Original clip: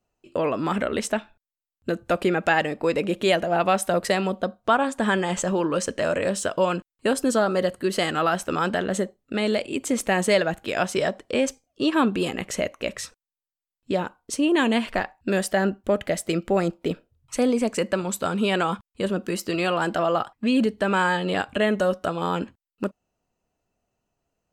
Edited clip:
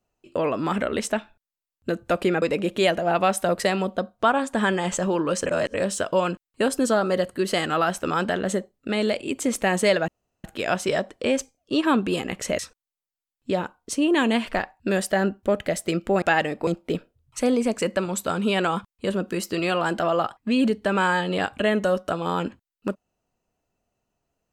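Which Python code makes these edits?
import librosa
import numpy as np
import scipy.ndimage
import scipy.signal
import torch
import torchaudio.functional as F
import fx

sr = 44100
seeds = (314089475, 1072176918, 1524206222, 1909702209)

y = fx.edit(x, sr, fx.move(start_s=2.42, length_s=0.45, to_s=16.63),
    fx.reverse_span(start_s=5.91, length_s=0.28),
    fx.insert_room_tone(at_s=10.53, length_s=0.36),
    fx.cut(start_s=12.68, length_s=0.32), tone=tone)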